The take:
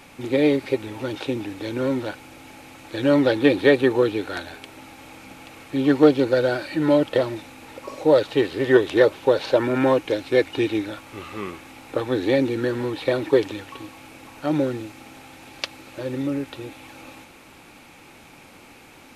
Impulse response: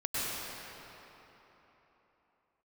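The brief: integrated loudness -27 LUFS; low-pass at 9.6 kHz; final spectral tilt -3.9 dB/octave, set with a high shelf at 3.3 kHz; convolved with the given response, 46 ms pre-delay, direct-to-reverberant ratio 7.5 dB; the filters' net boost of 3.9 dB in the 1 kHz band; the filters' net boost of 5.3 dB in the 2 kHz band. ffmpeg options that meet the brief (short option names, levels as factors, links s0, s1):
-filter_complex "[0:a]lowpass=9600,equalizer=f=1000:t=o:g=3.5,equalizer=f=2000:t=o:g=4,highshelf=f=3300:g=4.5,asplit=2[s0][s1];[1:a]atrim=start_sample=2205,adelay=46[s2];[s1][s2]afir=irnorm=-1:irlink=0,volume=0.168[s3];[s0][s3]amix=inputs=2:normalize=0,volume=0.473"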